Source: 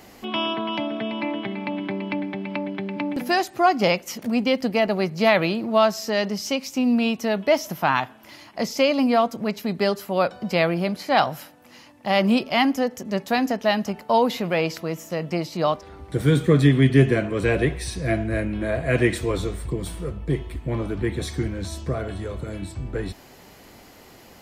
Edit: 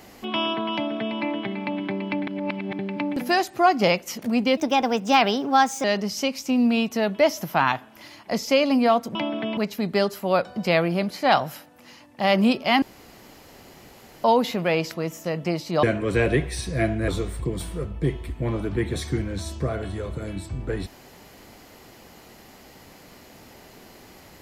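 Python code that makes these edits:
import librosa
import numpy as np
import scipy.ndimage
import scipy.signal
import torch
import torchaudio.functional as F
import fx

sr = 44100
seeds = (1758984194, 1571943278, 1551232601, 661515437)

y = fx.edit(x, sr, fx.duplicate(start_s=0.73, length_s=0.42, to_s=9.43),
    fx.reverse_span(start_s=2.27, length_s=0.52),
    fx.speed_span(start_s=4.57, length_s=1.55, speed=1.22),
    fx.room_tone_fill(start_s=12.68, length_s=1.42),
    fx.cut(start_s=15.69, length_s=1.43),
    fx.cut(start_s=18.37, length_s=0.97), tone=tone)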